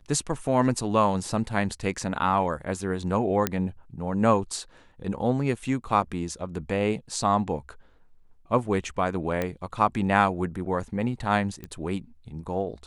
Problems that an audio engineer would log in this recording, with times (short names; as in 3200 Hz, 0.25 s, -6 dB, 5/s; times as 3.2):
3.47 pop -7 dBFS
9.42 pop -14 dBFS
11.64 pop -23 dBFS